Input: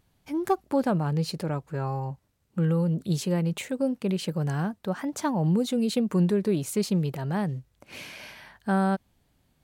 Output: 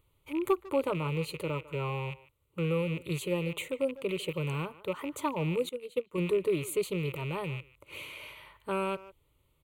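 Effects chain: rattle on loud lows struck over -37 dBFS, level -30 dBFS; static phaser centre 1.1 kHz, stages 8; speakerphone echo 150 ms, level -17 dB; 5.69–6.18 s: upward expansion 2.5:1, over -39 dBFS

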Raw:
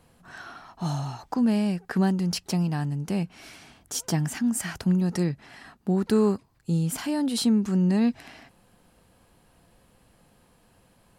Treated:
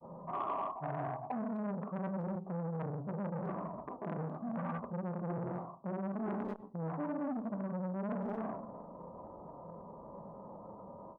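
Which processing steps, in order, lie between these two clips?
high-pass 620 Hz 6 dB/octave; granulator 100 ms, grains 20 per s, pitch spread up and down by 0 st; steep low-pass 1.4 kHz 96 dB/octave; speakerphone echo 250 ms, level -15 dB; reverberation RT60 0.50 s, pre-delay 5 ms, DRR 5 dB; reverse; compression 10:1, threshold -49 dBFS, peak gain reduction 25 dB; reverse; formant shift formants -3 st; in parallel at -0.5 dB: peak limiter -47 dBFS, peak gain reduction 8 dB; on the sum: transformer saturation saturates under 760 Hz; trim +12.5 dB

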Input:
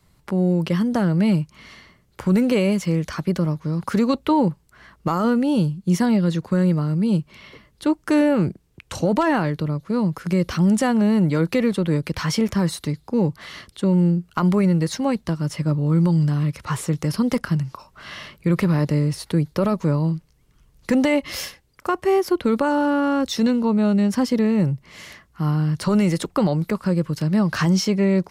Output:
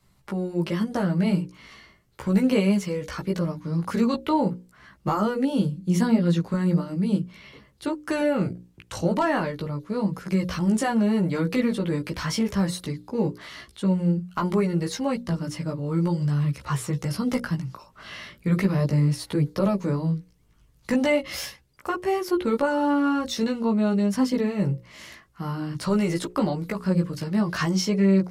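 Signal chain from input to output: chorus voices 2, 0.39 Hz, delay 16 ms, depth 1.6 ms; hum notches 60/120/180/240/300/360/420/480/540 Hz

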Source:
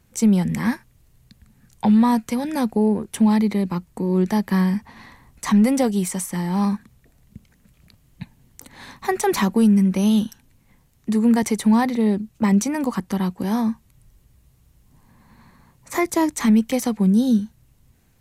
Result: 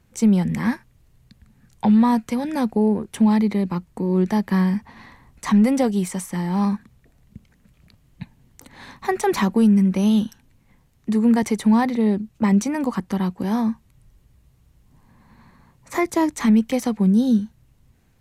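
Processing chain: treble shelf 5.9 kHz -7.5 dB

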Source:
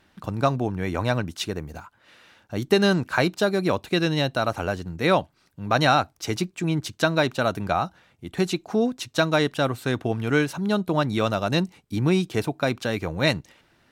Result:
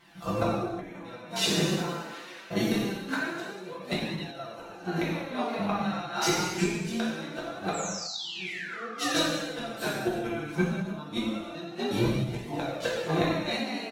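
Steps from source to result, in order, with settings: spectrogram pixelated in time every 50 ms; high-pass 170 Hz 6 dB/octave; comb 5.9 ms, depth 94%; painted sound fall, 7.73–8.83 s, 1.1–7.9 kHz -20 dBFS; frequency-shifting echo 233 ms, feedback 41%, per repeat +65 Hz, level -15 dB; inverted gate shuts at -17 dBFS, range -24 dB; gated-style reverb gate 400 ms falling, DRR -7 dB; flange 0.24 Hz, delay 0.9 ms, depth 5.2 ms, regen +40%; endings held to a fixed fall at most 180 dB/s; trim +3 dB

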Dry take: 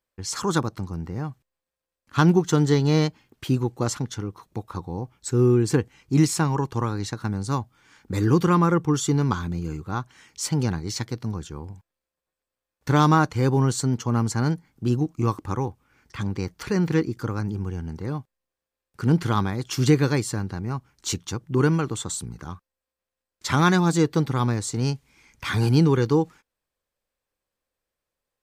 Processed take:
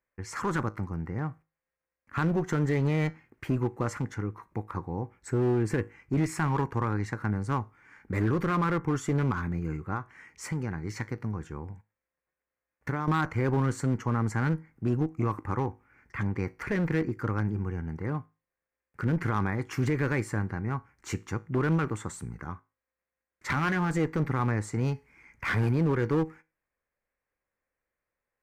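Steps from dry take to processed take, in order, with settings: resonant high shelf 2.7 kHz -9.5 dB, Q 3; 9.92–13.08 s: compression 16:1, threshold -25 dBFS, peak gain reduction 13.5 dB; peak limiter -14 dBFS, peak gain reduction 9 dB; feedback comb 53 Hz, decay 0.29 s, harmonics all, mix 40%; one-sided clip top -27 dBFS, bottom -17 dBFS

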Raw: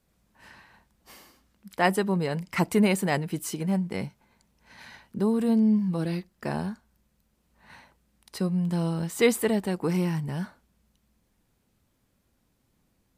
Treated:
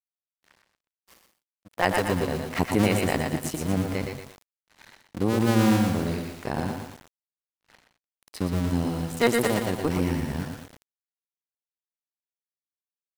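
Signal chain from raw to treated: cycle switcher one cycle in 2, muted; level rider gain up to 7.5 dB; crossover distortion -43.5 dBFS; on a send: delay 123 ms -8.5 dB; on the sum: bit-crushed delay 115 ms, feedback 55%, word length 6-bit, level -5 dB; trim -4.5 dB

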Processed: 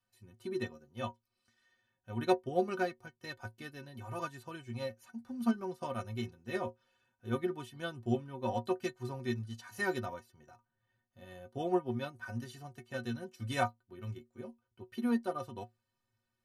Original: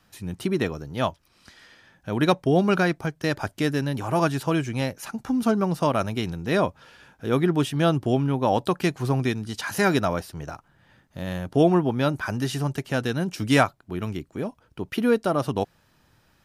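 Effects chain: inharmonic resonator 110 Hz, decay 0.27 s, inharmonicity 0.03; upward expansion 1.5:1, over -50 dBFS

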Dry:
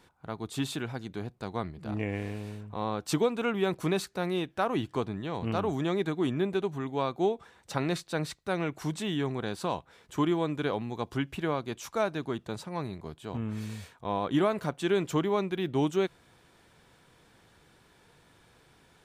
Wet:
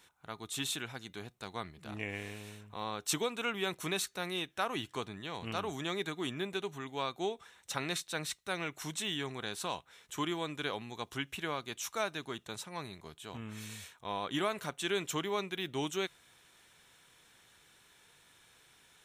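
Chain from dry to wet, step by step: tilt shelf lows -8 dB, about 1.3 kHz; band-stop 4.7 kHz, Q 6.3; feedback comb 410 Hz, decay 0.18 s, harmonics odd, mix 30%

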